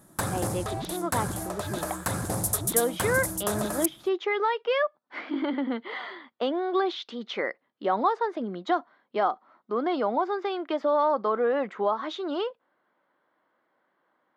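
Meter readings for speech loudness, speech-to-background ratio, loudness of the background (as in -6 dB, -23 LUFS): -29.0 LUFS, 0.5 dB, -29.5 LUFS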